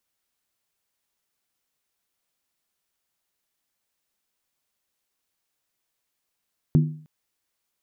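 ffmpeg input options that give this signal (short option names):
-f lavfi -i "aevalsrc='0.266*pow(10,-3*t/0.49)*sin(2*PI*154*t)+0.112*pow(10,-3*t/0.388)*sin(2*PI*245.5*t)+0.0473*pow(10,-3*t/0.335)*sin(2*PI*328.9*t)+0.02*pow(10,-3*t/0.323)*sin(2*PI*353.6*t)+0.00841*pow(10,-3*t/0.301)*sin(2*PI*408.6*t)':d=0.31:s=44100"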